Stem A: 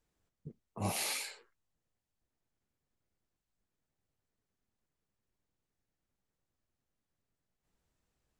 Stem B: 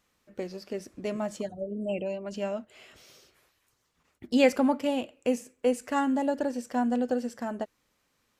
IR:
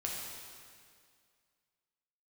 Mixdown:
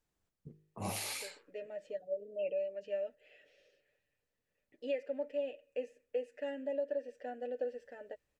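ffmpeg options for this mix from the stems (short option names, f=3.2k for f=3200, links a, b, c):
-filter_complex "[0:a]bandreject=f=51.41:t=h:w=4,bandreject=f=102.82:t=h:w=4,bandreject=f=154.23:t=h:w=4,bandreject=f=205.64:t=h:w=4,bandreject=f=257.05:t=h:w=4,bandreject=f=308.46:t=h:w=4,bandreject=f=359.87:t=h:w=4,bandreject=f=411.28:t=h:w=4,bandreject=f=462.69:t=h:w=4,volume=-2.5dB[a];[1:a]aecho=1:1:6.8:0.63,dynaudnorm=f=280:g=7:m=11dB,asplit=3[b][c][d];[b]bandpass=f=530:t=q:w=8,volume=0dB[e];[c]bandpass=f=1.84k:t=q:w=8,volume=-6dB[f];[d]bandpass=f=2.48k:t=q:w=8,volume=-9dB[g];[e][f][g]amix=inputs=3:normalize=0,adelay=500,volume=-11dB[h];[a][h]amix=inputs=2:normalize=0,alimiter=level_in=2.5dB:limit=-24dB:level=0:latency=1:release=302,volume=-2.5dB"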